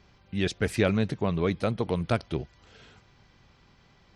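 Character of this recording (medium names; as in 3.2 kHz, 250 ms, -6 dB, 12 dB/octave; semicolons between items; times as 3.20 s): noise floor -60 dBFS; spectral tilt -6.0 dB/octave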